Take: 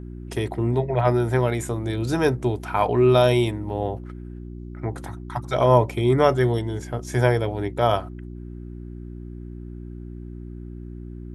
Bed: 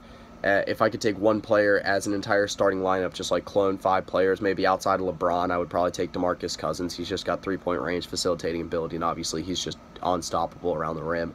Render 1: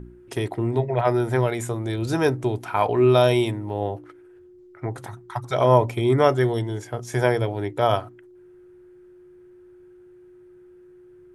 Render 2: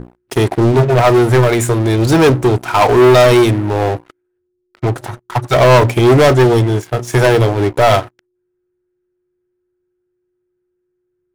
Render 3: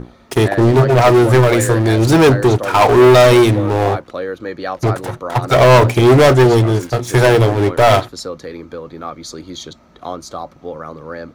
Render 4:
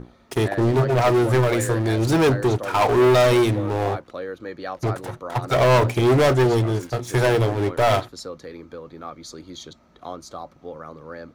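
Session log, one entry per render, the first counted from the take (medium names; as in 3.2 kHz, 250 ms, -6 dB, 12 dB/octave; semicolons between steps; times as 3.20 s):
de-hum 60 Hz, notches 5
waveshaping leveller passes 5; upward expansion 1.5:1, over -26 dBFS
add bed -1.5 dB
trim -8 dB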